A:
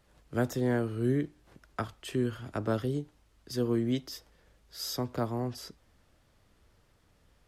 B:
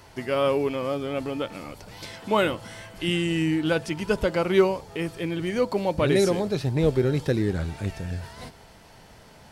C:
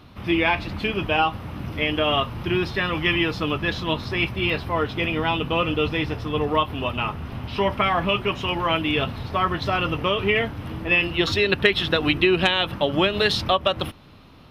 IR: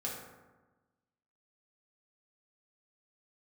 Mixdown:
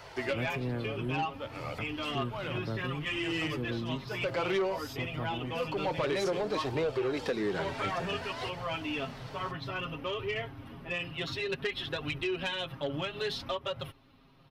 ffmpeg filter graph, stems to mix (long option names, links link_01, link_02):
-filter_complex "[0:a]equalizer=frequency=95:width_type=o:width=2.6:gain=7,volume=-9.5dB,asplit=2[link_01][link_02];[1:a]acrossover=split=350 6300:gain=0.178 1 0.251[link_03][link_04][link_05];[link_03][link_04][link_05]amix=inputs=3:normalize=0,aeval=exprs='0.398*sin(PI/2*2*val(0)/0.398)':channel_layout=same,volume=-2dB[link_06];[2:a]aecho=1:1:7.4:0.78,volume=-10.5dB[link_07];[link_02]apad=whole_len=419456[link_08];[link_06][link_08]sidechaincompress=threshold=-56dB:ratio=5:attack=5.5:release=294[link_09];[link_09][link_07]amix=inputs=2:normalize=0,flanger=delay=1.3:depth=6.2:regen=-30:speed=0.58:shape=triangular,acompressor=threshold=-25dB:ratio=5,volume=0dB[link_10];[link_01][link_10]amix=inputs=2:normalize=0,equalizer=frequency=7800:width_type=o:width=1.5:gain=-2,asoftclip=type=tanh:threshold=-24dB"